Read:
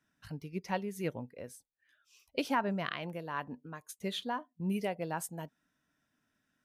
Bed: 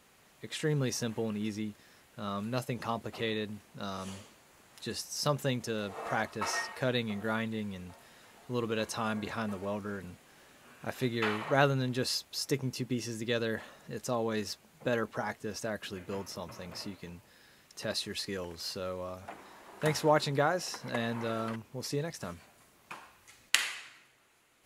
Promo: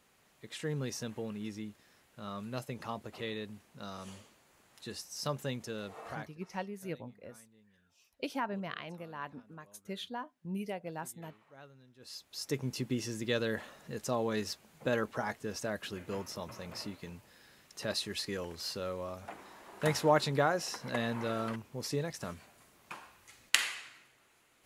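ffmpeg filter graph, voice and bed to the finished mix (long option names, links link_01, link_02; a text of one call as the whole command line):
ffmpeg -i stem1.wav -i stem2.wav -filter_complex "[0:a]adelay=5850,volume=-4.5dB[link_01];[1:a]volume=22.5dB,afade=type=out:start_time=5.94:duration=0.45:silence=0.0707946,afade=type=in:start_time=11.99:duration=0.77:silence=0.0398107[link_02];[link_01][link_02]amix=inputs=2:normalize=0" out.wav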